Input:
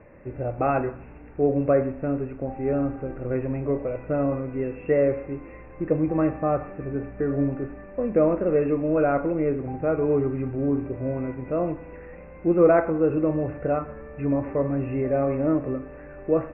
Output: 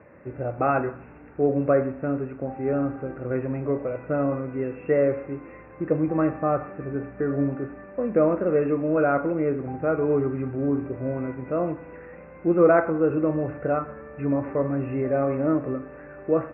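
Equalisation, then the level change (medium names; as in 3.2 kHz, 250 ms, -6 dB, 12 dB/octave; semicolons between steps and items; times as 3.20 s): high-pass 94 Hz 12 dB/octave; distance through air 170 m; peaking EQ 1.4 kHz +5.5 dB 0.72 oct; 0.0 dB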